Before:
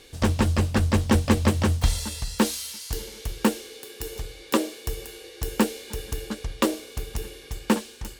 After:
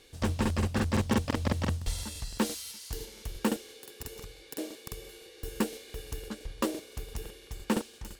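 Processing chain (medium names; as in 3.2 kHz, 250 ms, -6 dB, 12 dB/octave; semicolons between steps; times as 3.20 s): crackling interface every 0.17 s, samples 2048, repeat, from 0.41 s; trim -7.5 dB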